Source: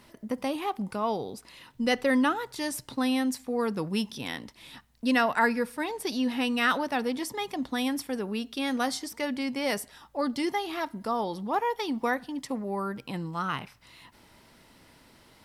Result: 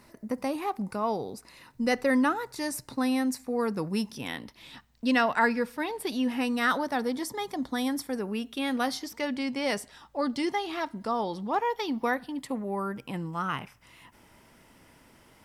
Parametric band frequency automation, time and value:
parametric band −11 dB 0.34 octaves
0:04.09 3,200 Hz
0:04.70 11,000 Hz
0:05.62 11,000 Hz
0:06.58 2,700 Hz
0:08.04 2,700 Hz
0:09.31 12,000 Hz
0:11.55 12,000 Hz
0:12.83 4,100 Hz

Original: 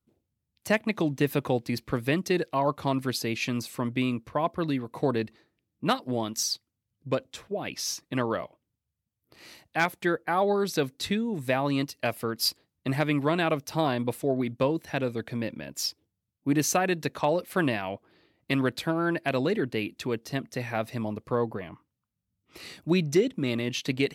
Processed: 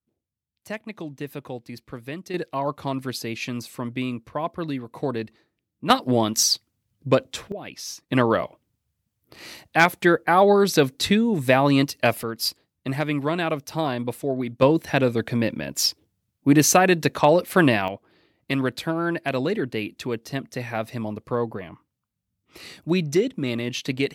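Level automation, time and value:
−8 dB
from 0:02.34 −0.5 dB
from 0:05.90 +9 dB
from 0:07.52 −3 dB
from 0:08.09 +8.5 dB
from 0:12.23 +1 dB
from 0:14.62 +8.5 dB
from 0:17.88 +2 dB

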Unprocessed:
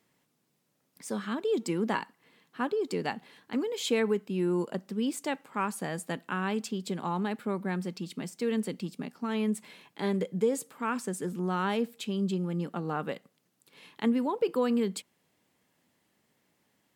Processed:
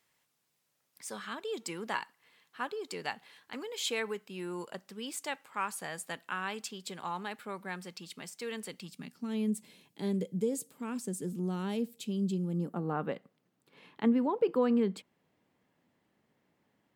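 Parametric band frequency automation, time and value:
parametric band −14 dB 2.5 octaves
0:08.77 230 Hz
0:09.34 1,300 Hz
0:12.43 1,300 Hz
0:13.13 11,000 Hz

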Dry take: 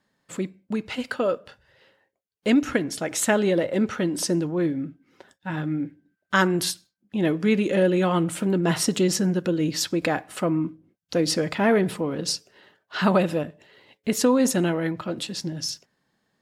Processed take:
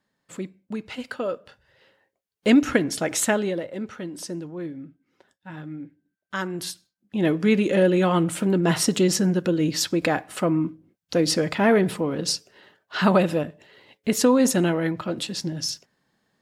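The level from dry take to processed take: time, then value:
0:01.32 −4 dB
0:02.47 +3 dB
0:03.13 +3 dB
0:03.70 −9 dB
0:06.44 −9 dB
0:07.28 +1.5 dB

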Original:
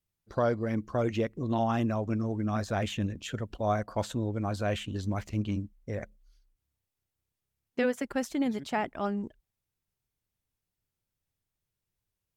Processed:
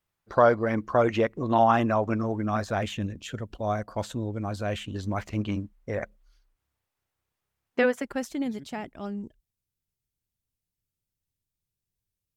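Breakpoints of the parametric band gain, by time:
parametric band 1,100 Hz 2.8 octaves
0:02.16 +11.5 dB
0:03.08 0 dB
0:04.70 0 dB
0:05.40 +10 dB
0:07.80 +10 dB
0:08.07 +1.5 dB
0:08.83 −8.5 dB

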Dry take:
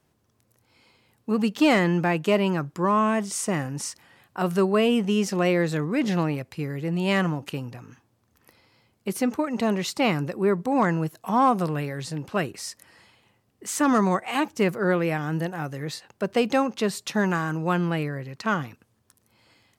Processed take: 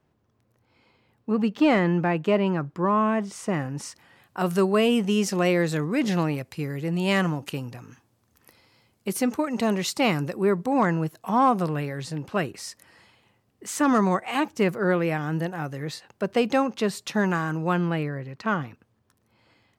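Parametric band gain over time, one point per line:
parametric band 11,000 Hz 2.1 octaves
0:03.26 −15 dB
0:03.89 −7 dB
0:04.53 +3.5 dB
0:10.35 +3.5 dB
0:10.91 −3 dB
0:17.63 −3 dB
0:18.26 −11.5 dB

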